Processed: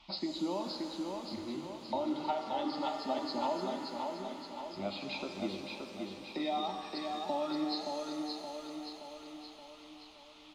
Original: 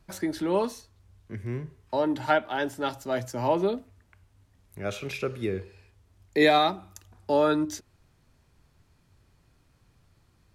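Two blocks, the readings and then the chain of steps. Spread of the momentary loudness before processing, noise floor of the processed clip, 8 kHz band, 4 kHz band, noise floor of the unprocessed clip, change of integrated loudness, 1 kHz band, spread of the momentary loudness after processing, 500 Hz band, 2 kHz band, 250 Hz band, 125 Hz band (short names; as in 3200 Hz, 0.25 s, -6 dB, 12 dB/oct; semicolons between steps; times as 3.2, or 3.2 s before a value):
14 LU, -55 dBFS, -9.5 dB, -4.0 dB, -65 dBFS, -10.0 dB, -7.0 dB, 13 LU, -10.5 dB, -14.5 dB, -6.0 dB, -15.0 dB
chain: nonlinear frequency compression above 3700 Hz 4:1; reverb removal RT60 1.6 s; low shelf 120 Hz -9.5 dB; compressor, threshold -32 dBFS, peak gain reduction 14 dB; band noise 850–3800 Hz -59 dBFS; fixed phaser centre 440 Hz, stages 6; on a send: feedback echo 0.573 s, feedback 55%, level -4.5 dB; on the sum: shimmer reverb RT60 2.3 s, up +7 st, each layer -8 dB, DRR 5.5 dB; gain +1.5 dB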